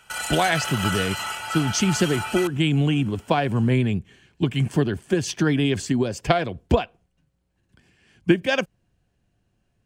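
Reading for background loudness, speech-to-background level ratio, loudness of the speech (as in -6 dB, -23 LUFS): -28.5 LUFS, 5.5 dB, -23.0 LUFS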